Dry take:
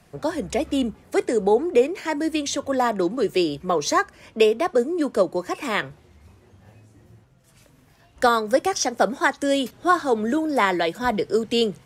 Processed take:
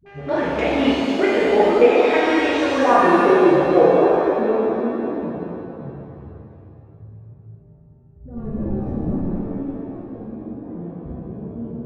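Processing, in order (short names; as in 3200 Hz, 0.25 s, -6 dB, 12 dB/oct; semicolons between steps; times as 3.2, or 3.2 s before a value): 8.31–9.28 sample leveller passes 5; in parallel at -2 dB: limiter -13.5 dBFS, peak gain reduction 7 dB; on the sum: buzz 400 Hz, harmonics 36, -42 dBFS -7 dB/oct; low-pass sweep 2400 Hz -> 120 Hz, 2.16–5.34; dispersion highs, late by 62 ms, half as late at 350 Hz; on a send: tape echo 0.234 s, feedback 66%, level -8 dB, low-pass 5700 Hz; on the sum: shimmer reverb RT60 1.8 s, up +7 st, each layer -8 dB, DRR -7 dB; gain -8 dB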